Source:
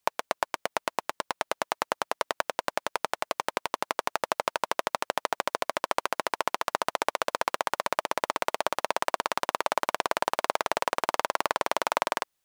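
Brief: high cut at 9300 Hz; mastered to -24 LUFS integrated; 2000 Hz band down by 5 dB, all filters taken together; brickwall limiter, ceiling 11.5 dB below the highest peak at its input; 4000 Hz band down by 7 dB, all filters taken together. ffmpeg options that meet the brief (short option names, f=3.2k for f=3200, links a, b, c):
-af "lowpass=9.3k,equalizer=f=2k:t=o:g=-5,equalizer=f=4k:t=o:g=-7.5,volume=15.5dB,alimiter=limit=-3dB:level=0:latency=1"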